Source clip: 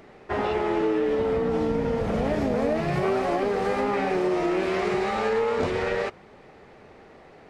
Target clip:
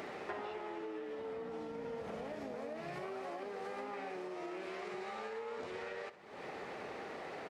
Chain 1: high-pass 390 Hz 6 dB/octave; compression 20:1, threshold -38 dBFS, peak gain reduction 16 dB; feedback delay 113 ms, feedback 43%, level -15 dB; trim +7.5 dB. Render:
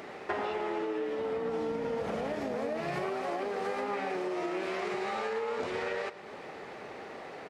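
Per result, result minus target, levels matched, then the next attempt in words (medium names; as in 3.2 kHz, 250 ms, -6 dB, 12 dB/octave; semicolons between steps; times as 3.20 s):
echo 48 ms late; compression: peak gain reduction -9.5 dB
high-pass 390 Hz 6 dB/octave; compression 20:1, threshold -38 dBFS, peak gain reduction 16 dB; feedback delay 65 ms, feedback 43%, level -15 dB; trim +7.5 dB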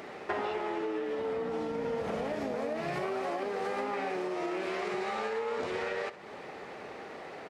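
compression: peak gain reduction -9.5 dB
high-pass 390 Hz 6 dB/octave; compression 20:1, threshold -48 dBFS, peak gain reduction 25.5 dB; feedback delay 65 ms, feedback 43%, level -15 dB; trim +7.5 dB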